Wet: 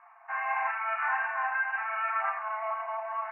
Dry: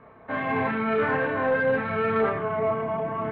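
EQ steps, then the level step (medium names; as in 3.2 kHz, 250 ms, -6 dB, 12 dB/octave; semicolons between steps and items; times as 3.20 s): brick-wall FIR band-pass 670–2900 Hz; distance through air 220 m; 0.0 dB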